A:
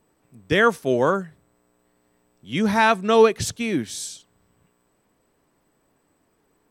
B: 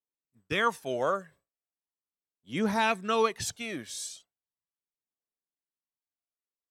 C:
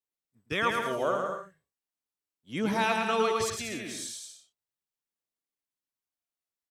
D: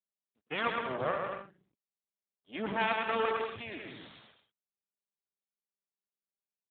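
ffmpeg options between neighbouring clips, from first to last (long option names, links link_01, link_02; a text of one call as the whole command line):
ffmpeg -i in.wav -af "agate=range=-33dB:threshold=-40dB:ratio=3:detection=peak,lowshelf=frequency=280:gain=-10,aphaser=in_gain=1:out_gain=1:delay=1.9:decay=0.47:speed=0.38:type=triangular,volume=-7dB" out.wav
ffmpeg -i in.wav -af "aecho=1:1:110|187|240.9|278.6|305:0.631|0.398|0.251|0.158|0.1,volume=-1.5dB" out.wav
ffmpeg -i in.wav -filter_complex "[0:a]acrossover=split=200[link_01][link_02];[link_01]adelay=150[link_03];[link_03][link_02]amix=inputs=2:normalize=0,aeval=exprs='max(val(0),0)':channel_layout=same,volume=1dB" -ar 8000 -c:a libopencore_amrnb -b:a 12200 out.amr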